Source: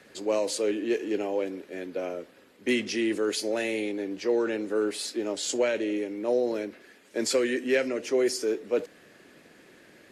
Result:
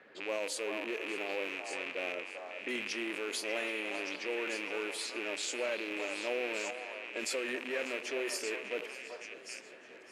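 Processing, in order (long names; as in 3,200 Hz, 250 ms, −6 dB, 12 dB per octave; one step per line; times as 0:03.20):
loose part that buzzes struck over −43 dBFS, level −19 dBFS
high-pass filter 590 Hz 6 dB per octave
parametric band 5,500 Hz −6 dB 1.6 octaves
low-pass that shuts in the quiet parts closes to 2,500 Hz, open at −28 dBFS
brickwall limiter −26.5 dBFS, peak gain reduction 10 dB
echo through a band-pass that steps 389 ms, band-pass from 890 Hz, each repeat 1.4 octaves, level −1 dB
feedback echo with a swinging delay time 595 ms, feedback 69%, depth 68 cents, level −17.5 dB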